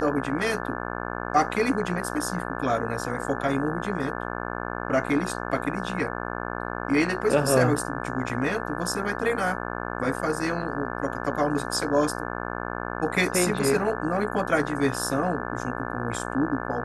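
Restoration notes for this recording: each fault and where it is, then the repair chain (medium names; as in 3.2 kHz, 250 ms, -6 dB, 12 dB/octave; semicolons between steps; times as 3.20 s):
buzz 60 Hz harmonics 29 -32 dBFS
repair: de-hum 60 Hz, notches 29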